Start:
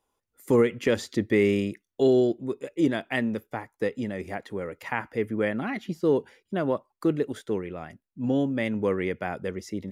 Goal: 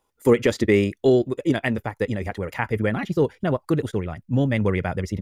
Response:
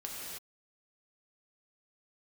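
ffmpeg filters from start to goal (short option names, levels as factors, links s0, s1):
-af "atempo=1.9,asubboost=boost=7:cutoff=110,volume=1.88"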